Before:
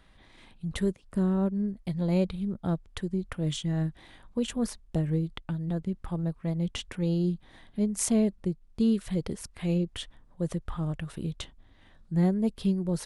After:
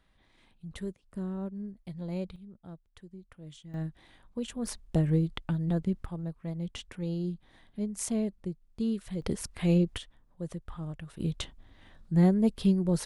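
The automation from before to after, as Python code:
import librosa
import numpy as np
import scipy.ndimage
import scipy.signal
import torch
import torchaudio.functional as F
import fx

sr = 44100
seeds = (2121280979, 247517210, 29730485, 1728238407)

y = fx.gain(x, sr, db=fx.steps((0.0, -9.5), (2.36, -17.5), (3.74, -6.0), (4.67, 2.0), (6.05, -6.0), (9.22, 3.0), (9.98, -7.0), (11.2, 2.0)))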